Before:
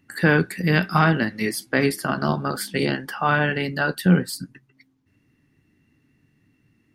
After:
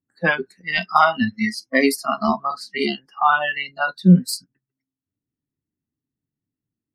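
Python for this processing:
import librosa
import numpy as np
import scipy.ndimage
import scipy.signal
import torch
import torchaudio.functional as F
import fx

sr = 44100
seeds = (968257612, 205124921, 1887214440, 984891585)

y = fx.noise_reduce_blind(x, sr, reduce_db=29)
y = fx.env_lowpass(y, sr, base_hz=1000.0, full_db=-19.5)
y = F.gain(torch.from_numpy(y), 6.0).numpy()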